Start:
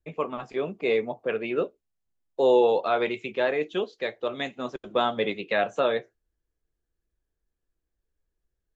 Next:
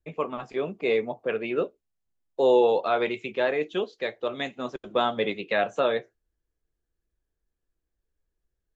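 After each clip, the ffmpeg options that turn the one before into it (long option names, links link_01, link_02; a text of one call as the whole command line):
ffmpeg -i in.wav -af anull out.wav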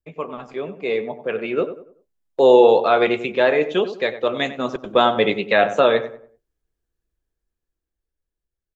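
ffmpeg -i in.wav -filter_complex "[0:a]agate=range=-6dB:threshold=-49dB:ratio=16:detection=peak,dynaudnorm=framelen=250:gausssize=13:maxgain=11.5dB,asplit=2[link_01][link_02];[link_02]adelay=95,lowpass=frequency=1600:poles=1,volume=-11dB,asplit=2[link_03][link_04];[link_04]adelay=95,lowpass=frequency=1600:poles=1,volume=0.36,asplit=2[link_05][link_06];[link_06]adelay=95,lowpass=frequency=1600:poles=1,volume=0.36,asplit=2[link_07][link_08];[link_08]adelay=95,lowpass=frequency=1600:poles=1,volume=0.36[link_09];[link_03][link_05][link_07][link_09]amix=inputs=4:normalize=0[link_10];[link_01][link_10]amix=inputs=2:normalize=0" out.wav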